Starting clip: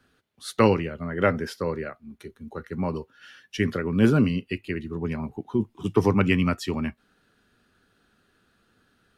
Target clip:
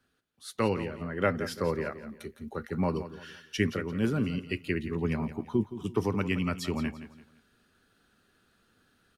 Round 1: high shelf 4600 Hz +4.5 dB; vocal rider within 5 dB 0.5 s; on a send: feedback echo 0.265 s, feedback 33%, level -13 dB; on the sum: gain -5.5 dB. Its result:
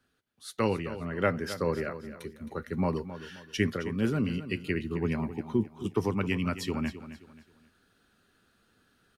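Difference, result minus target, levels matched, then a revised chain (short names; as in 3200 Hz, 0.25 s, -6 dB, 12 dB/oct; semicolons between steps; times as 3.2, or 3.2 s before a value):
echo 95 ms late
high shelf 4600 Hz +4.5 dB; vocal rider within 5 dB 0.5 s; on a send: feedback echo 0.17 s, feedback 33%, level -13 dB; on the sum: gain -5.5 dB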